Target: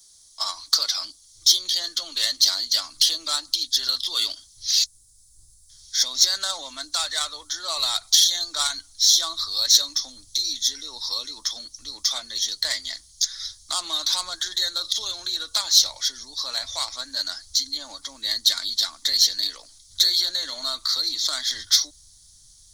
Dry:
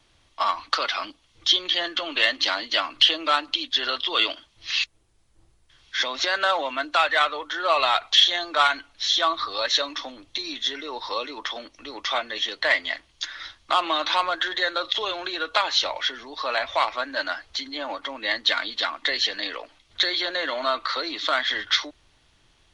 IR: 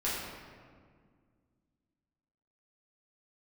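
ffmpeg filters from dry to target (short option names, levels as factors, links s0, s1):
-af "asubboost=boost=7:cutoff=150,aexciter=amount=15.1:drive=9.7:freq=4400,volume=0.266"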